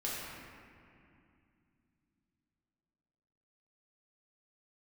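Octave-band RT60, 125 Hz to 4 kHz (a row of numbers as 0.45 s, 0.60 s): 4.0 s, 4.1 s, 2.5 s, 2.4 s, 2.4 s, 1.6 s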